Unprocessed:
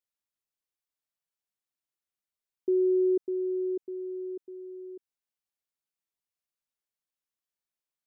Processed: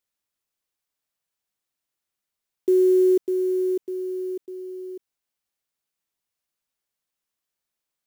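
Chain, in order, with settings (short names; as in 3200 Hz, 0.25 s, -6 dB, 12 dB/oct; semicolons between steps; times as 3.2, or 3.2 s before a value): block floating point 5-bit; gain +7 dB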